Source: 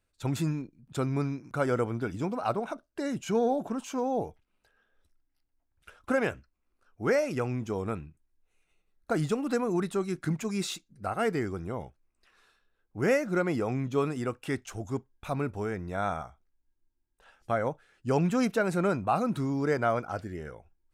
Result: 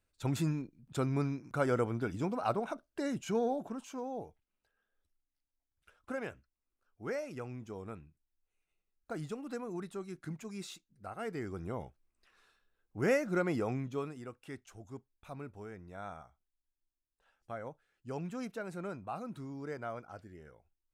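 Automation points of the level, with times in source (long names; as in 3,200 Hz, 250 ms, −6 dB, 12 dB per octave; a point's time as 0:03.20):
0:03.05 −3 dB
0:04.27 −12 dB
0:11.25 −12 dB
0:11.65 −4 dB
0:13.69 −4 dB
0:14.20 −14 dB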